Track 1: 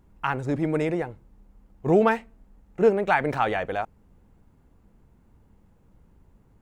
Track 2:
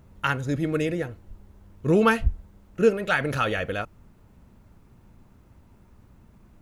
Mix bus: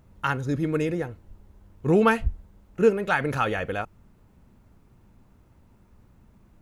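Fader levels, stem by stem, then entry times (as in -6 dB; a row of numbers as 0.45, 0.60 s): -8.5, -3.0 dB; 0.00, 0.00 s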